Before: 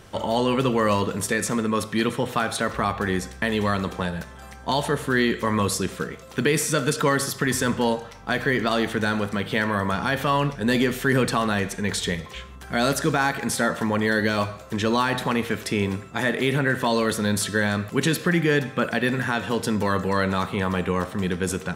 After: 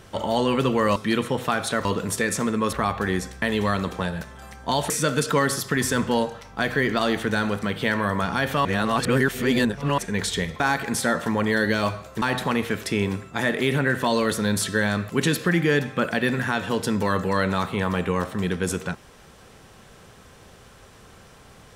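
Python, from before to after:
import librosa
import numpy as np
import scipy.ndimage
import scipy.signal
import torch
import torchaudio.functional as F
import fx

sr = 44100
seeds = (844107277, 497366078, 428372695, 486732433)

y = fx.edit(x, sr, fx.move(start_s=0.96, length_s=0.88, to_s=2.73),
    fx.cut(start_s=4.9, length_s=1.7),
    fx.reverse_span(start_s=10.35, length_s=1.33),
    fx.cut(start_s=12.3, length_s=0.85),
    fx.cut(start_s=14.77, length_s=0.25), tone=tone)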